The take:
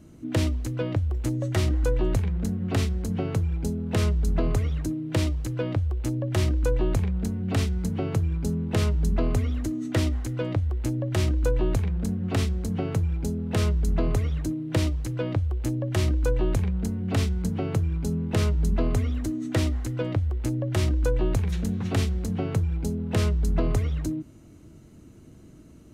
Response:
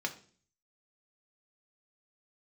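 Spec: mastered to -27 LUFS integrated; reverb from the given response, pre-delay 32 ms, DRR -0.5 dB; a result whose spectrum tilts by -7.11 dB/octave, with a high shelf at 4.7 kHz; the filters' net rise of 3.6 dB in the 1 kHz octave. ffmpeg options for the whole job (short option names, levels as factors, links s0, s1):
-filter_complex "[0:a]equalizer=f=1000:t=o:g=5,highshelf=f=4700:g=-4,asplit=2[s0][s1];[1:a]atrim=start_sample=2205,adelay=32[s2];[s1][s2]afir=irnorm=-1:irlink=0,volume=0.708[s3];[s0][s3]amix=inputs=2:normalize=0,volume=0.794"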